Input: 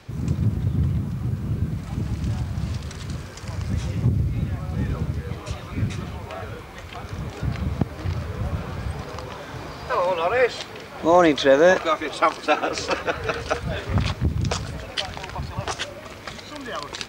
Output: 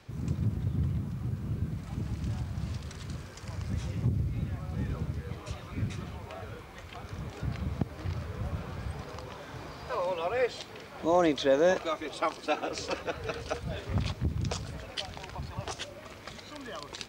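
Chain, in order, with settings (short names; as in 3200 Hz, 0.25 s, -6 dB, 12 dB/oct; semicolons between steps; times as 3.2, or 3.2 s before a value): dynamic EQ 1500 Hz, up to -5 dB, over -37 dBFS, Q 0.98; gain -8 dB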